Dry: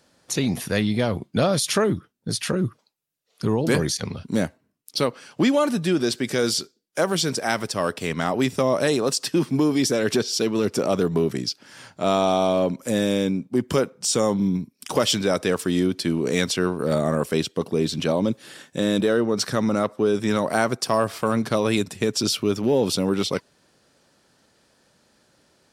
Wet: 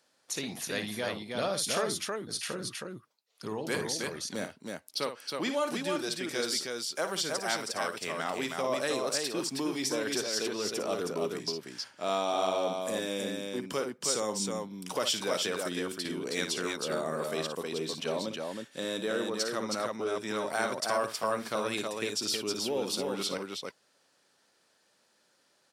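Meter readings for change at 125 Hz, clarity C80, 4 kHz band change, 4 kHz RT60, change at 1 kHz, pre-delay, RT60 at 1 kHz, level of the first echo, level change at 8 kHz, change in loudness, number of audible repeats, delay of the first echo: -18.0 dB, no reverb, -5.5 dB, no reverb, -7.0 dB, no reverb, no reverb, -9.0 dB, -5.5 dB, -9.5 dB, 2, 56 ms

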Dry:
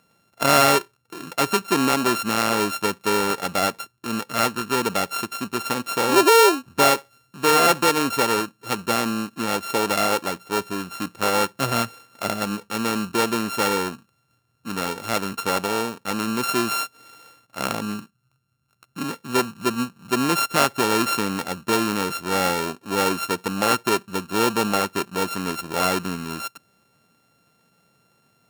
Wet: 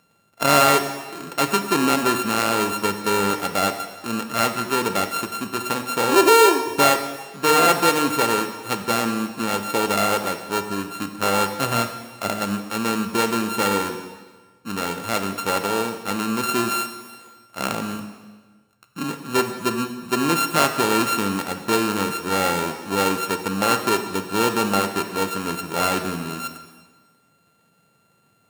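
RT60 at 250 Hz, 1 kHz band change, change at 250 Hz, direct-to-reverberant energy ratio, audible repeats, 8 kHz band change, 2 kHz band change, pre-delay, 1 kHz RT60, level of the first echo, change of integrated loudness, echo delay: 1.4 s, +1.0 dB, +1.0 dB, 7.0 dB, no echo, +1.0 dB, +1.0 dB, 6 ms, 1.4 s, no echo, +1.0 dB, no echo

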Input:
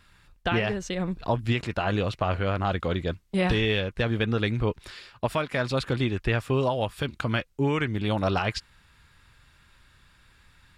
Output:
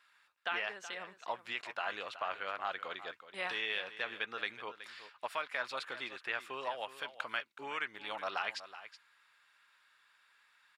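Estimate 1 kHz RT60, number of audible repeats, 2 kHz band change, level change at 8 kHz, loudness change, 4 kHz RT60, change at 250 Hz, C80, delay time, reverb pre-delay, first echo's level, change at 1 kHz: no reverb, 1, -6.0 dB, -10.5 dB, -12.0 dB, no reverb, -28.0 dB, no reverb, 373 ms, no reverb, -13.5 dB, -8.5 dB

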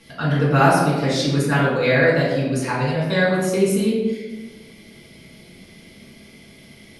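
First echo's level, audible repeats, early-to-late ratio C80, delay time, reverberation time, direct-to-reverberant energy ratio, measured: no echo, no echo, 3.0 dB, no echo, 1.3 s, -8.0 dB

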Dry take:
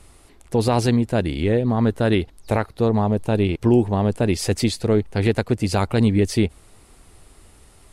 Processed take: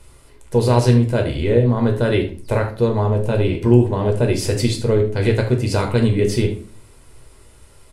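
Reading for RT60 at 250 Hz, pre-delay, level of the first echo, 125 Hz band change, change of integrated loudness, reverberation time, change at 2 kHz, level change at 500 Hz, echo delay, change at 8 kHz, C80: 0.55 s, 5 ms, -13.0 dB, +4.5 dB, +2.5 dB, 0.40 s, +1.5 dB, +3.5 dB, 75 ms, +1.0 dB, 14.5 dB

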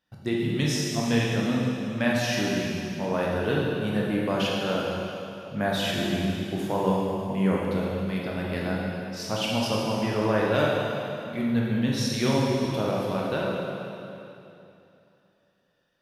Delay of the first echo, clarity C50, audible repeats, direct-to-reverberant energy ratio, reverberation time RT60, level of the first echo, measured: no echo, -1.5 dB, no echo, -4.5 dB, 2.8 s, no echo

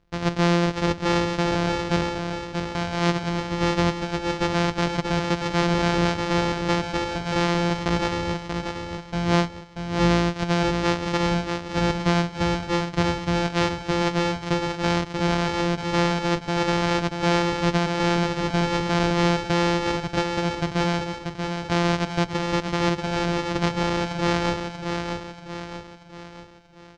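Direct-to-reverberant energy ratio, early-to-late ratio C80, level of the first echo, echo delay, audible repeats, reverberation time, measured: no reverb, no reverb, -5.5 dB, 635 ms, 5, no reverb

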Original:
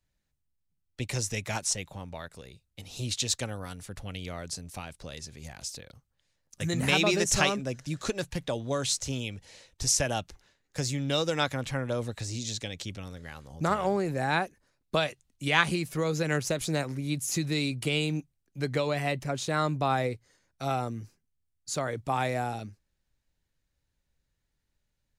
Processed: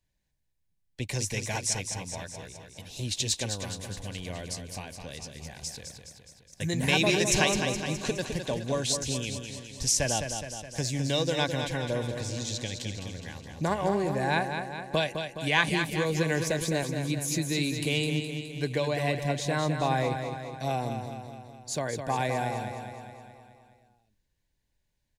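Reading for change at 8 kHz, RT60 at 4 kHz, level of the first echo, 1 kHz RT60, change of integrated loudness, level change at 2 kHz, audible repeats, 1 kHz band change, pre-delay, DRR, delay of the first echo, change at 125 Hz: +1.0 dB, no reverb, -7.0 dB, no reverb, +0.5 dB, +1.0 dB, 6, 0.0 dB, no reverb, no reverb, 209 ms, +1.5 dB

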